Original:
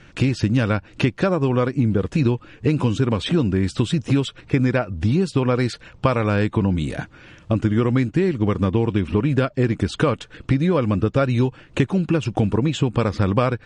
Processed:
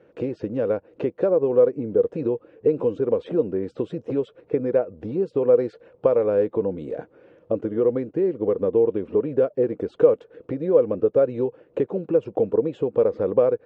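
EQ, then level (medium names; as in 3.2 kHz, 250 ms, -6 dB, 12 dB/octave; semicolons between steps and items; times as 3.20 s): band-pass filter 480 Hz, Q 5.3; +8.5 dB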